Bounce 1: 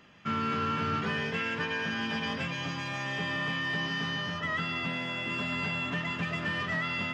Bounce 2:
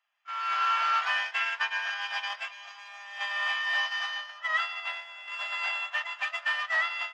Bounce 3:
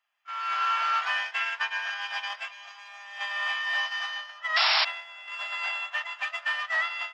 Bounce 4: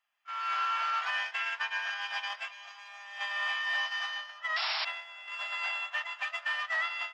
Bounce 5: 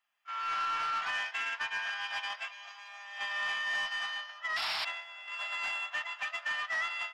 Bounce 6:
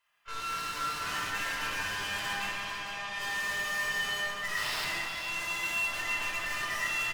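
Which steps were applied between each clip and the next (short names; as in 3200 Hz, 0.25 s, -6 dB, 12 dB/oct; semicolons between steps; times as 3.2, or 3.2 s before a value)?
gate -31 dBFS, range -16 dB; AGC gain up to 12.5 dB; elliptic high-pass 700 Hz, stop band 50 dB; gain -5 dB
painted sound noise, 4.56–4.85, 610–5600 Hz -23 dBFS
limiter -20.5 dBFS, peak gain reduction 9 dB; gain -2.5 dB
soft clip -26.5 dBFS, distortion -19 dB
tube stage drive 46 dB, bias 0.7; echo 0.45 s -9 dB; shoebox room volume 3200 m³, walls mixed, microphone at 5.1 m; gain +6.5 dB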